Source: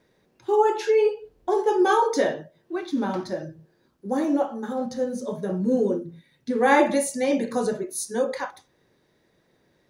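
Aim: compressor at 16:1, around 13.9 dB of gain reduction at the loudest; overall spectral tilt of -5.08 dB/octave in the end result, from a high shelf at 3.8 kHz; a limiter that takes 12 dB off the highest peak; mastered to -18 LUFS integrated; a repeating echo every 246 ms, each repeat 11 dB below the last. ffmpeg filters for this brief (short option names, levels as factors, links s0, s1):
-af "highshelf=f=3800:g=-5,acompressor=threshold=0.0355:ratio=16,alimiter=level_in=2.51:limit=0.0631:level=0:latency=1,volume=0.398,aecho=1:1:246|492|738:0.282|0.0789|0.0221,volume=12.6"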